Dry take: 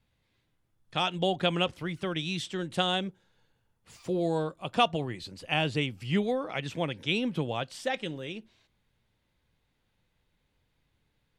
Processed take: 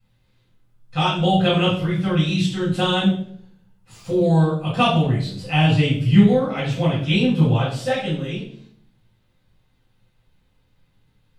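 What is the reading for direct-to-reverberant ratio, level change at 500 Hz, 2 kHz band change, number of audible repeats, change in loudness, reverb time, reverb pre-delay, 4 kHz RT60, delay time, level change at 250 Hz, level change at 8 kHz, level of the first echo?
−8.5 dB, +8.5 dB, +7.0 dB, no echo audible, +11.0 dB, 0.60 s, 6 ms, 0.45 s, no echo audible, +14.0 dB, can't be measured, no echo audible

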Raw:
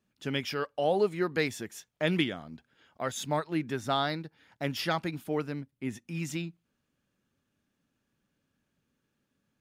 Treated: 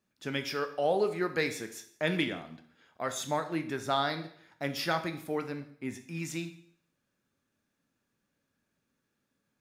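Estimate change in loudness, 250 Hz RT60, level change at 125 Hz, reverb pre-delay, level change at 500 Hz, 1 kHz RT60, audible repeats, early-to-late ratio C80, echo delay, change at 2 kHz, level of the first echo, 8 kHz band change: −1.0 dB, 0.65 s, −4.0 dB, 7 ms, −1.0 dB, 0.65 s, no echo audible, 15.0 dB, no echo audible, +0.5 dB, no echo audible, +1.0 dB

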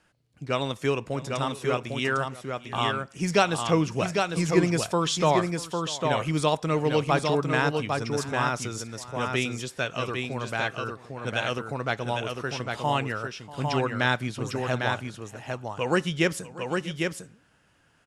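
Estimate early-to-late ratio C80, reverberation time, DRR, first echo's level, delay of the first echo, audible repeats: no reverb audible, no reverb audible, no reverb audible, −18.5 dB, 640 ms, 2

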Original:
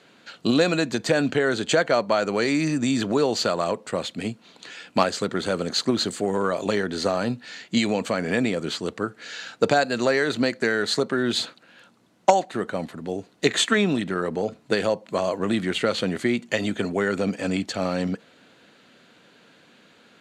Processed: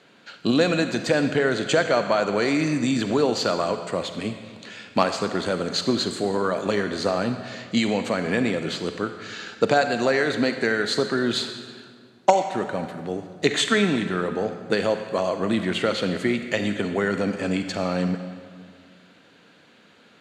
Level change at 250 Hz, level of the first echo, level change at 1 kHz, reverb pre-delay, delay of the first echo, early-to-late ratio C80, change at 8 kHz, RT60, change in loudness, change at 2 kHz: +0.5 dB, no echo audible, +0.5 dB, 37 ms, no echo audible, 9.0 dB, −2.0 dB, 1.9 s, +0.5 dB, +0.5 dB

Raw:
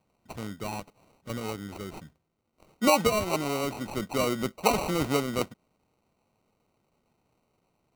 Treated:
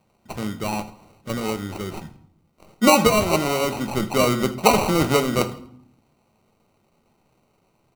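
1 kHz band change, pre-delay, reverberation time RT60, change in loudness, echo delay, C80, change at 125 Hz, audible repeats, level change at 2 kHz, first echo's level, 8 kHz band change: +8.0 dB, 5 ms, 0.65 s, +7.5 dB, 81 ms, 16.0 dB, +8.5 dB, 2, +8.0 dB, −19.0 dB, +8.0 dB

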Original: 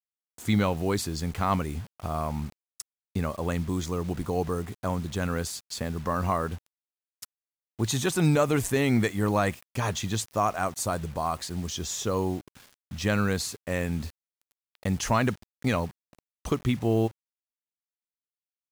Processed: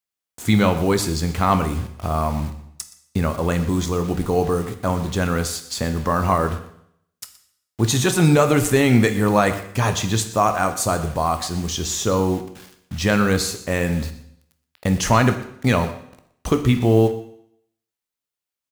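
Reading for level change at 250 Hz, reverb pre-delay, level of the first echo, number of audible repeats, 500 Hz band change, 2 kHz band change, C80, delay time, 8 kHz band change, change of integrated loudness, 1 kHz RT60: +8.0 dB, 13 ms, −17.5 dB, 1, +8.5 dB, +8.0 dB, 13.0 dB, 121 ms, +8.0 dB, +8.0 dB, 0.70 s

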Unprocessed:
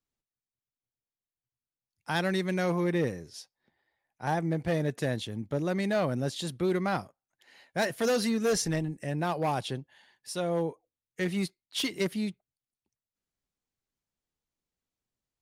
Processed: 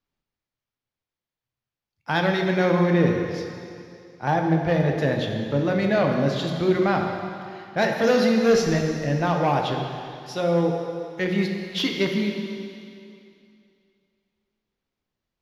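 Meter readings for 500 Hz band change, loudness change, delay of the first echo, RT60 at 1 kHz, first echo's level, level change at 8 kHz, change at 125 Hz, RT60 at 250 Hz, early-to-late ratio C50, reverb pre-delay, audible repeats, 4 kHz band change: +8.5 dB, +7.5 dB, no echo audible, 2.6 s, no echo audible, −1.5 dB, +8.0 dB, 2.5 s, 3.5 dB, 11 ms, no echo audible, +5.5 dB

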